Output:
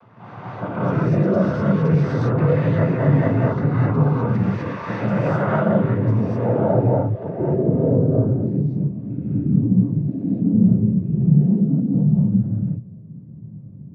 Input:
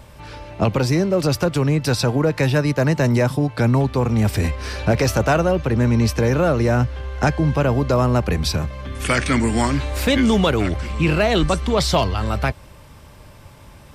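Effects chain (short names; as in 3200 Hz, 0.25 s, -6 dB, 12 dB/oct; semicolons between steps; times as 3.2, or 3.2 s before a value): Chebyshev low-pass 5700 Hz, order 2; bell 880 Hz -8 dB 2.2 oct; limiter -20 dBFS, peak gain reduction 9 dB; low-pass sweep 1200 Hz -> 190 Hz, 5.67–9.18; noise vocoder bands 16; non-linear reverb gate 0.28 s rising, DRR -8 dB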